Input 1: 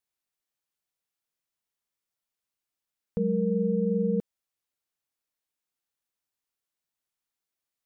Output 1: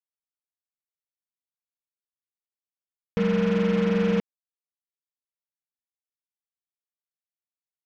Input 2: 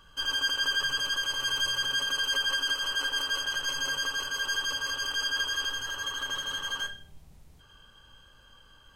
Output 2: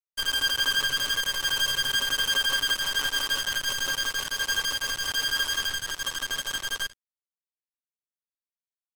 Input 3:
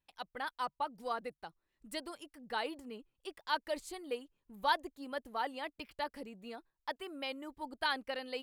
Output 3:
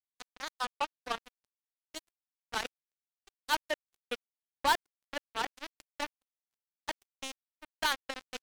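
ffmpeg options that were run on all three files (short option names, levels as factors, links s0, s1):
-filter_complex "[0:a]asplit=6[s0][s1][s2][s3][s4][s5];[s1]adelay=342,afreqshift=130,volume=0.075[s6];[s2]adelay=684,afreqshift=260,volume=0.0457[s7];[s3]adelay=1026,afreqshift=390,volume=0.0279[s8];[s4]adelay=1368,afreqshift=520,volume=0.017[s9];[s5]adelay=1710,afreqshift=650,volume=0.0104[s10];[s0][s6][s7][s8][s9][s10]amix=inputs=6:normalize=0,acrusher=bits=4:mix=0:aa=0.5,volume=1.41"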